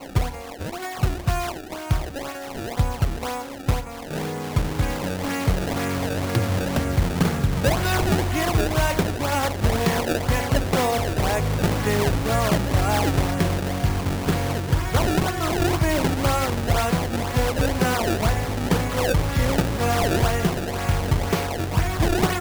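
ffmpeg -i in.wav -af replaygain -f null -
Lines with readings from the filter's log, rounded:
track_gain = +6.0 dB
track_peak = 0.199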